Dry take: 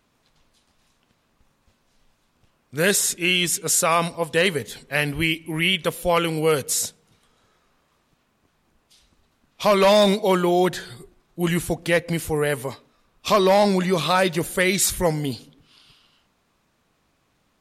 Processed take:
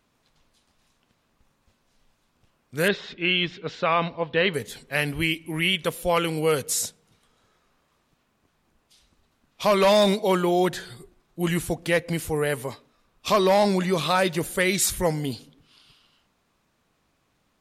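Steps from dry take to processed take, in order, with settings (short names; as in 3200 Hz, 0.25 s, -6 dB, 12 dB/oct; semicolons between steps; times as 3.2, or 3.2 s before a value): 2.88–4.54 steep low-pass 3900 Hz 36 dB/oct; gain -2.5 dB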